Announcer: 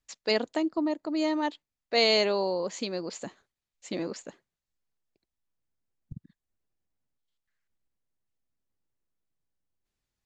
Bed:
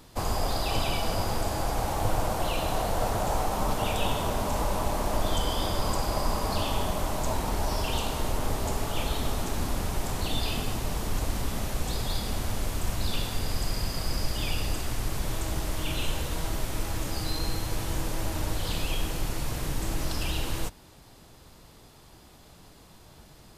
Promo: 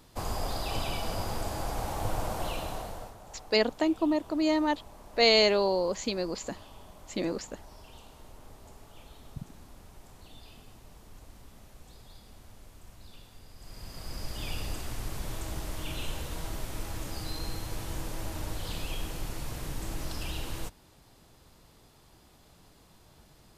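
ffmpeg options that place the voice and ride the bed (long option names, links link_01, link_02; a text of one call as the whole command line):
ffmpeg -i stem1.wav -i stem2.wav -filter_complex "[0:a]adelay=3250,volume=1.5dB[link_01];[1:a]volume=11dB,afade=type=out:start_time=2.47:duration=0.68:silence=0.141254,afade=type=in:start_time=13.57:duration=0.96:silence=0.158489[link_02];[link_01][link_02]amix=inputs=2:normalize=0" out.wav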